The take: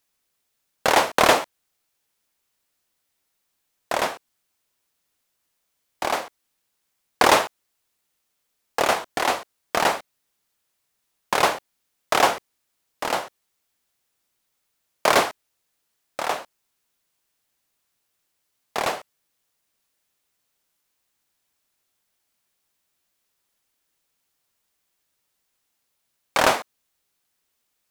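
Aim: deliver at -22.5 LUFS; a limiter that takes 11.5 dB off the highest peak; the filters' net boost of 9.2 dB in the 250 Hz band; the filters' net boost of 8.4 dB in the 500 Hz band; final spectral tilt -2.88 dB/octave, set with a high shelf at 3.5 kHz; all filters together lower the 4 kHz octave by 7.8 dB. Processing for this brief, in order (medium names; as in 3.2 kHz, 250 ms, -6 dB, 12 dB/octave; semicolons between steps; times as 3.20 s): peaking EQ 250 Hz +8.5 dB; peaking EQ 500 Hz +9 dB; treble shelf 3.5 kHz -6 dB; peaking EQ 4 kHz -6.5 dB; trim +2 dB; peak limiter -7.5 dBFS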